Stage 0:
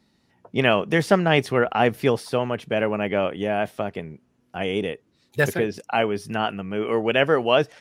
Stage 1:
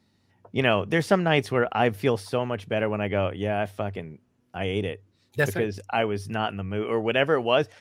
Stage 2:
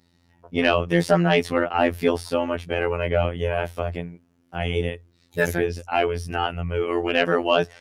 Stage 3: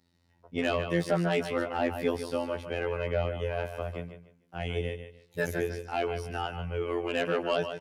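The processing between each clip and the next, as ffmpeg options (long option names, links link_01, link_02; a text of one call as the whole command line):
ffmpeg -i in.wav -af "equalizer=frequency=98:width=7.6:gain=14.5,volume=-3dB" out.wav
ffmpeg -i in.wav -af "afftfilt=real='hypot(re,im)*cos(PI*b)':imag='0':win_size=2048:overlap=0.75,acontrast=74" out.wav
ffmpeg -i in.wav -filter_complex "[0:a]aecho=1:1:149|298|447:0.316|0.0791|0.0198,acrossover=split=570[link_01][link_02];[link_02]asoftclip=type=tanh:threshold=-14.5dB[link_03];[link_01][link_03]amix=inputs=2:normalize=0,volume=-8dB" out.wav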